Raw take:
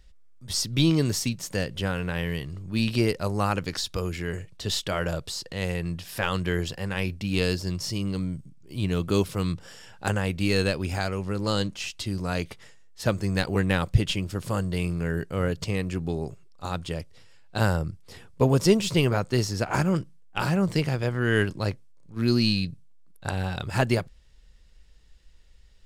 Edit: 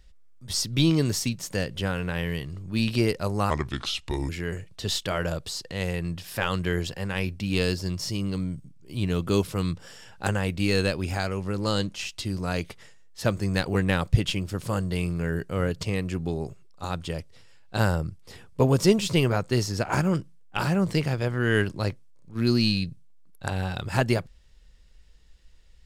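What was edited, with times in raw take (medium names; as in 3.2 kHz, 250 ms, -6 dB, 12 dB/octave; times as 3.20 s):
3.50–4.10 s: speed 76%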